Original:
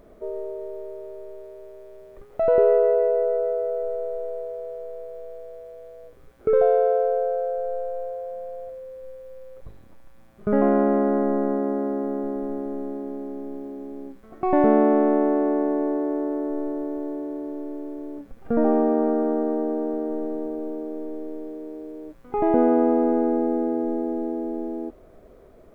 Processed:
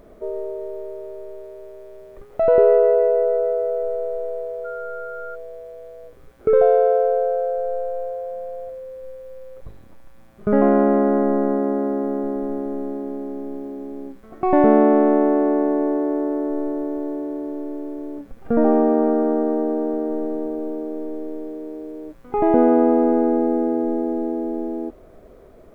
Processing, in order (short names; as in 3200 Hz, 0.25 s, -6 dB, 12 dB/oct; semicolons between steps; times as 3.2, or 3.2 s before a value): 4.64–5.34 whine 1400 Hz -37 dBFS; gain +3.5 dB